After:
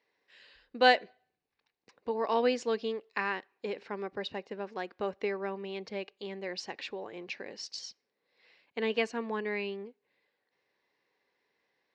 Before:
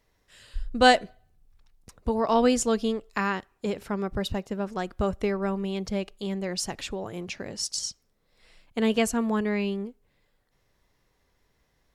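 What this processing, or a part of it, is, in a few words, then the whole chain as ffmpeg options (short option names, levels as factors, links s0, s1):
phone earpiece: -af "highpass=460,equalizer=f=650:t=q:w=4:g=-8,equalizer=f=930:t=q:w=4:g=-3,equalizer=f=1300:t=q:w=4:g=-10,equalizer=f=3300:t=q:w=4:g=-7,lowpass=f=4200:w=0.5412,lowpass=f=4200:w=1.3066"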